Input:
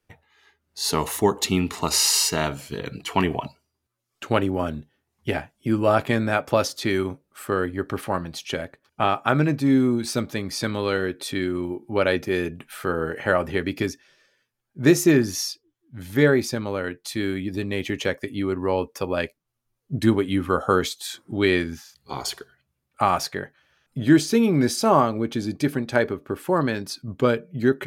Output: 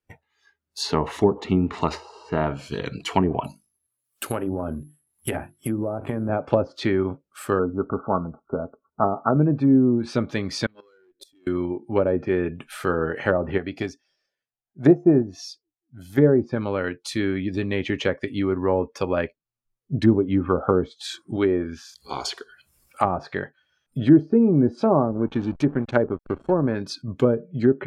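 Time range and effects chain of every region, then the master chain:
0:03.44–0:06.29: mains-hum notches 50/100/150/200/250/300/350 Hz + downward compressor 4 to 1, threshold −23 dBFS + bad sample-rate conversion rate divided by 4×, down none, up zero stuff
0:07.59–0:09.36: linear-phase brick-wall low-pass 1,500 Hz + comb filter 4.5 ms, depth 35%
0:10.66–0:11.47: tube saturation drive 25 dB, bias 0.35 + gate with flip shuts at −25 dBFS, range −28 dB
0:13.58–0:16.18: parametric band 720 Hz +14.5 dB 0.26 octaves + expander for the loud parts, over −25 dBFS
0:21.36–0:23.05: parametric band 130 Hz −7 dB 1.6 octaves + upward compression, threshold −38 dBFS
0:24.99–0:26.75: slack as between gear wheels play −30.5 dBFS + notch filter 4,900 Hz, Q 6.6
whole clip: treble cut that deepens with the level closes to 620 Hz, closed at −16.5 dBFS; noise reduction from a noise print of the clip's start 13 dB; level +2 dB

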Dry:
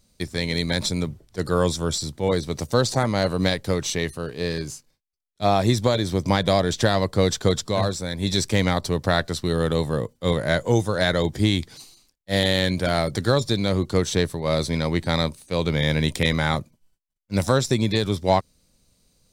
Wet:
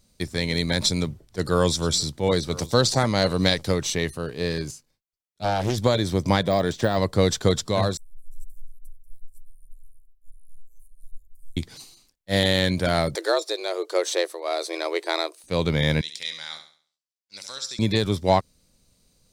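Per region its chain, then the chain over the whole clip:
0:00.82–0:03.72: dynamic equaliser 4,600 Hz, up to +5 dB, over −40 dBFS, Q 0.81 + single-tap delay 978 ms −19 dB
0:04.71–0:05.78: tube saturation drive 15 dB, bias 0.65 + highs frequency-modulated by the lows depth 0.56 ms
0:06.41–0:06.98: de-essing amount 75% + low-shelf EQ 74 Hz −11 dB
0:07.97–0:11.57: inverse Chebyshev band-stop filter 100–3,300 Hz, stop band 70 dB + spectral tilt −3 dB per octave
0:13.15–0:15.44: linear-phase brick-wall high-pass 240 Hz + frequency shifter +79 Hz + amplitude tremolo 1.1 Hz, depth 31%
0:16.01–0:17.79: resonant band-pass 5,000 Hz, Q 1.9 + flutter between parallel walls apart 11.8 metres, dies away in 0.47 s
whole clip: no processing

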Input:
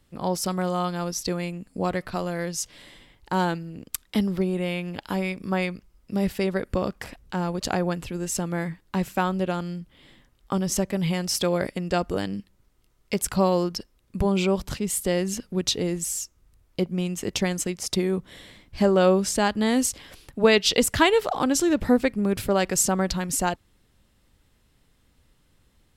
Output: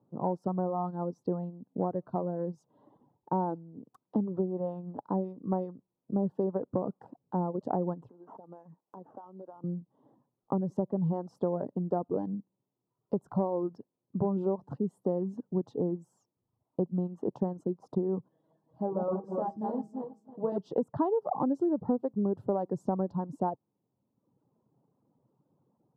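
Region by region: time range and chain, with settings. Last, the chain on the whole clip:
0:08.09–0:09.64: meter weighting curve A + downward compressor 5 to 1, threshold −41 dBFS + sample-rate reduction 4,300 Hz
0:18.28–0:20.58: feedback delay that plays each chunk backwards 160 ms, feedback 49%, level −2.5 dB + tuned comb filter 160 Hz, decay 0.28 s, mix 80%
whole clip: elliptic band-pass filter 130–940 Hz, stop band 40 dB; reverb reduction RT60 0.94 s; downward compressor 6 to 1, threshold −25 dBFS

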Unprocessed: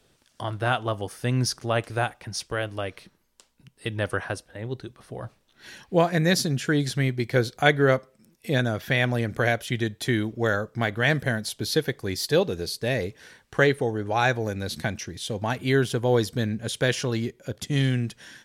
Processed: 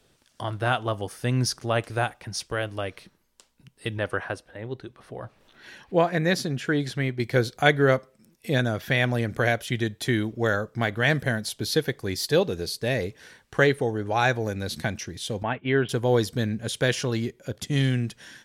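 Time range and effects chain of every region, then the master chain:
0:03.98–0:07.20: bass and treble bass −4 dB, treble −8 dB + upward compression, threshold −45 dBFS
0:15.43–0:15.89: Butterworth low-pass 3,200 Hz 48 dB per octave + downward expander −31 dBFS + low-shelf EQ 140 Hz −6.5 dB
whole clip: no processing

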